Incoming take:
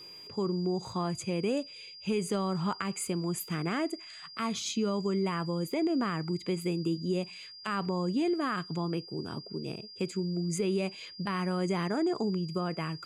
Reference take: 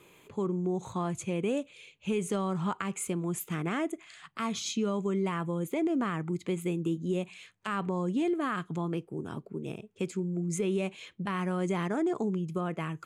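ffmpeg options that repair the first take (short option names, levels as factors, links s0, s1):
-af "bandreject=f=4800:w=30"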